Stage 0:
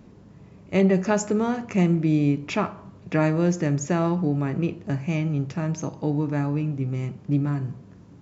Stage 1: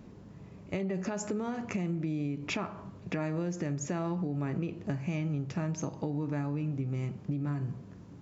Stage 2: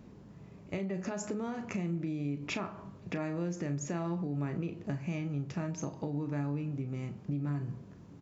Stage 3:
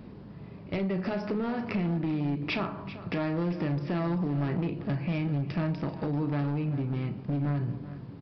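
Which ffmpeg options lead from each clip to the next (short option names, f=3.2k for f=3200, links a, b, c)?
-af "alimiter=limit=-18.5dB:level=0:latency=1:release=168,acompressor=threshold=-28dB:ratio=6,volume=-1.5dB"
-filter_complex "[0:a]asplit=2[a][b];[b]adelay=35,volume=-11dB[c];[a][c]amix=inputs=2:normalize=0,volume=-2.5dB"
-af "aresample=11025,volume=32dB,asoftclip=hard,volume=-32dB,aresample=44100,aecho=1:1:389:0.188,volume=7dB"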